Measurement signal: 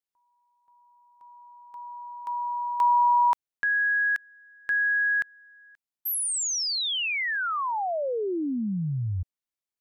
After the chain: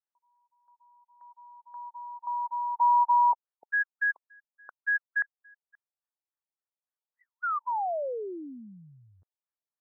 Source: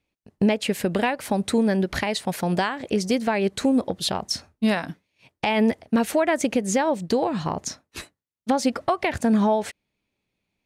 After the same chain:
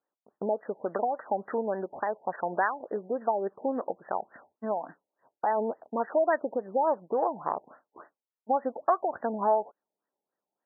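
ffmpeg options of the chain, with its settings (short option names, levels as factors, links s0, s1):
-af "highpass=590,lowpass=2700,afftfilt=real='re*lt(b*sr/1024,900*pow(2000/900,0.5+0.5*sin(2*PI*3.5*pts/sr)))':imag='im*lt(b*sr/1024,900*pow(2000/900,0.5+0.5*sin(2*PI*3.5*pts/sr)))':win_size=1024:overlap=0.75"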